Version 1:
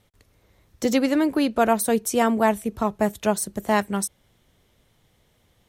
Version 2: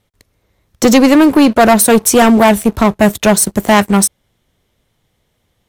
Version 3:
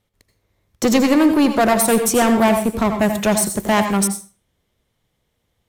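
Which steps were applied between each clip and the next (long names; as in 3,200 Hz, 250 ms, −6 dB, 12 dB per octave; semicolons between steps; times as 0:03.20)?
leveller curve on the samples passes 3; level +5.5 dB
convolution reverb RT60 0.35 s, pre-delay 72 ms, DRR 7 dB; level −7.5 dB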